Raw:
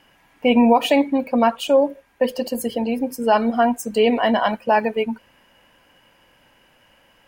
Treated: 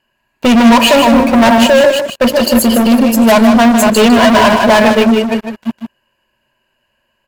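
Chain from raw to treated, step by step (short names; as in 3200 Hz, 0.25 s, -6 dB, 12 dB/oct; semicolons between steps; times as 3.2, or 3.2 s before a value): reverse delay 0.3 s, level -9 dB; ripple EQ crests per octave 1.4, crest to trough 11 dB; sample leveller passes 5; on a send: echo 0.154 s -7 dB; on the sum: gain -2 dB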